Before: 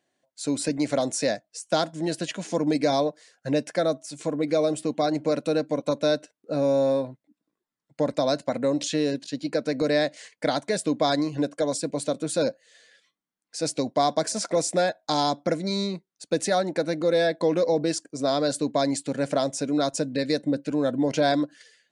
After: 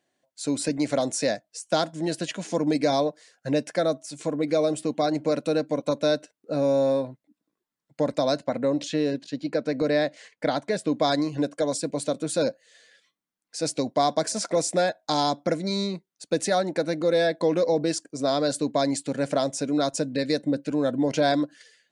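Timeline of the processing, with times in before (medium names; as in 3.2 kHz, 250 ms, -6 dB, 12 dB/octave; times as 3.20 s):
8.39–10.92 s: low-pass 3.3 kHz 6 dB/octave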